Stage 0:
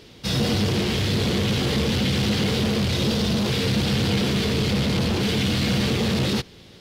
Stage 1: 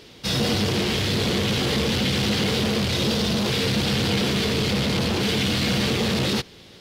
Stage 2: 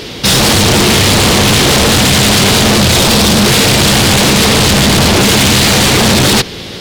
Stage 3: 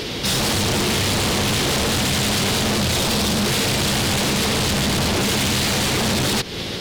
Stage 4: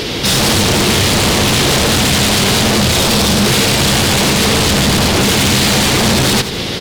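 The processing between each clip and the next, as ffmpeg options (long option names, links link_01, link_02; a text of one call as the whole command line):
ffmpeg -i in.wav -af "lowshelf=frequency=250:gain=-5.5,volume=2dB" out.wav
ffmpeg -i in.wav -af "aeval=exprs='0.237*sin(PI/2*3.55*val(0)/0.237)':channel_layout=same,volume=7dB" out.wav
ffmpeg -i in.wav -af "alimiter=limit=-17dB:level=0:latency=1:release=265" out.wav
ffmpeg -i in.wav -af "aecho=1:1:86|172|258|344|430:0.251|0.128|0.0653|0.0333|0.017,volume=7.5dB" out.wav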